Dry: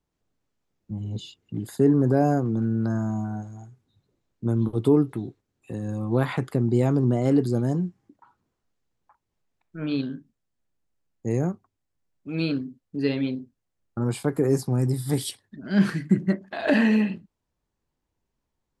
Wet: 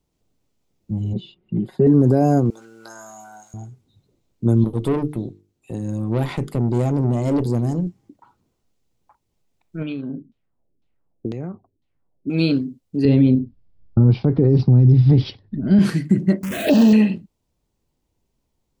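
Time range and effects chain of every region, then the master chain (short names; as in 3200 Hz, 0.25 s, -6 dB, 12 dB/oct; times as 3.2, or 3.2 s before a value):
1.13–1.87 air absorption 460 m + comb 5.4 ms, depth 75%
2.5–3.54 HPF 1200 Hz + high shelf 7400 Hz +10 dB + doubler 20 ms -7.5 dB
4.64–7.87 tube stage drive 22 dB, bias 0.7 + notches 50/100/150/200/250/300/350/400/450 Hz
9.82–12.3 compressor 10:1, threshold -32 dBFS + LFO low-pass saw down 2 Hz 260–3900 Hz
13.05–15.79 RIAA curve playback + careless resampling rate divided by 4×, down none, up filtered
16.43–16.93 zero-crossing step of -25 dBFS + HPF 84 Hz + envelope phaser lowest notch 550 Hz, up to 2100 Hz, full sweep at -15 dBFS
whole clip: bell 1400 Hz -7 dB 1.4 oct; notch 1700 Hz, Q 15; maximiser +13.5 dB; gain -5.5 dB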